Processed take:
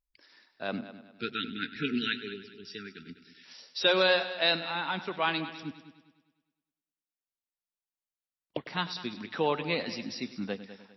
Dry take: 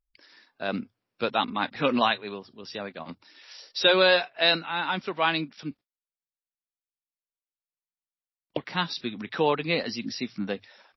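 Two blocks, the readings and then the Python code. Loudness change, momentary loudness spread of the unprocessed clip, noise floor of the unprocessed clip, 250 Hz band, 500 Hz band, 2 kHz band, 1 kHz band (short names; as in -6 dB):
-4.5 dB, 18 LU, under -85 dBFS, -4.0 dB, -5.0 dB, -4.0 dB, -6.5 dB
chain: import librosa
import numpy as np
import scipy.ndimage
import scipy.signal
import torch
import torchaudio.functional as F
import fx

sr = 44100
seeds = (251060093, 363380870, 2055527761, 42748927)

y = fx.spec_erase(x, sr, start_s=0.89, length_s=2.56, low_hz=470.0, high_hz=1300.0)
y = fx.echo_heads(y, sr, ms=101, heads='first and second', feedback_pct=41, wet_db=-16.0)
y = F.gain(torch.from_numpy(y), -4.5).numpy()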